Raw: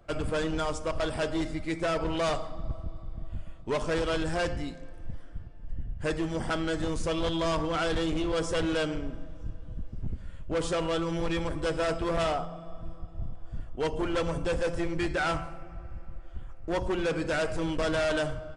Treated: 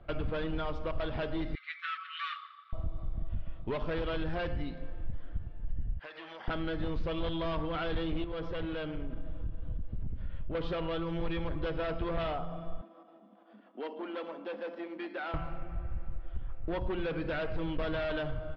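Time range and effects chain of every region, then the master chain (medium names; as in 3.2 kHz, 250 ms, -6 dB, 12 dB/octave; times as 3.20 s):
1.55–2.73 s: brick-wall FIR high-pass 1.1 kHz + distance through air 73 m + band-stop 4.8 kHz, Q 10
5.99–6.48 s: high-pass 890 Hz + compression 16:1, threshold -41 dBFS
8.24–10.55 s: compression 10:1, threshold -34 dBFS + distance through air 58 m
12.81–15.34 s: compression 3:1, threshold -36 dBFS + rippled Chebyshev high-pass 200 Hz, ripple 3 dB
whole clip: steep low-pass 4 kHz 36 dB/octave; compression 5:1, threshold -33 dBFS; bass shelf 120 Hz +6 dB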